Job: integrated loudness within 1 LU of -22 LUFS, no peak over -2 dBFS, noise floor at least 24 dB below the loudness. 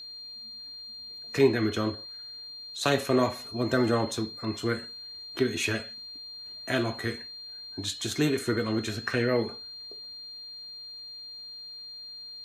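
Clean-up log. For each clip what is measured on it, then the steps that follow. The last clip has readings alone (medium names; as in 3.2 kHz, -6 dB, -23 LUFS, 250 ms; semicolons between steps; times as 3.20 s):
steady tone 4.2 kHz; tone level -40 dBFS; loudness -30.5 LUFS; peak level -10.0 dBFS; loudness target -22.0 LUFS
-> band-stop 4.2 kHz, Q 30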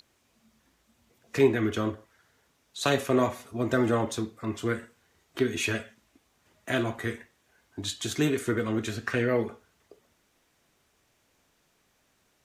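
steady tone not found; loudness -28.5 LUFS; peak level -10.0 dBFS; loudness target -22.0 LUFS
-> trim +6.5 dB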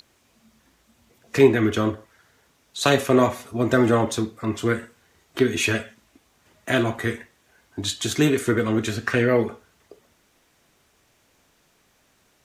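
loudness -22.0 LUFS; peak level -3.5 dBFS; noise floor -63 dBFS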